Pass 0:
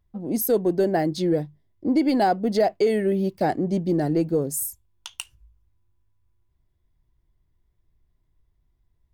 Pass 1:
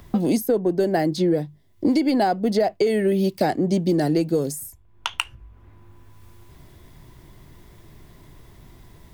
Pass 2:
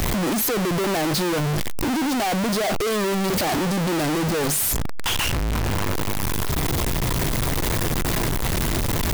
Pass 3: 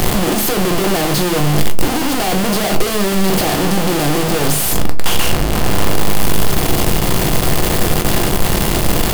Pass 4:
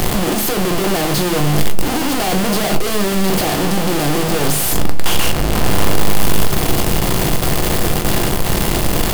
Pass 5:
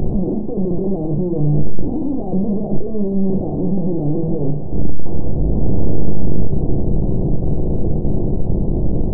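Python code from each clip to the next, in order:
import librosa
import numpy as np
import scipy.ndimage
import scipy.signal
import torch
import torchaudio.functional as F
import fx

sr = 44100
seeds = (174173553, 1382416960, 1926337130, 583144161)

y1 = fx.band_squash(x, sr, depth_pct=100)
y1 = y1 * librosa.db_to_amplitude(1.0)
y2 = np.sign(y1) * np.sqrt(np.mean(np.square(y1)))
y2 = y2 * librosa.db_to_amplitude(2.0)
y3 = fx.bin_compress(y2, sr, power=0.6)
y3 = fx.room_shoebox(y3, sr, seeds[0], volume_m3=140.0, walls='furnished', distance_m=0.85)
y3 = y3 * librosa.db_to_amplitude(1.0)
y4 = fx.rider(y3, sr, range_db=10, speed_s=2.0)
y4 = y4 + 10.0 ** (-17.5 / 20.0) * np.pad(y4, (int(1158 * sr / 1000.0), 0))[:len(y4)]
y4 = fx.end_taper(y4, sr, db_per_s=140.0)
y4 = y4 * librosa.db_to_amplitude(-1.0)
y5 = scipy.ndimage.gaussian_filter1d(y4, 17.0, mode='constant')
y5 = y5 * librosa.db_to_amplitude(1.5)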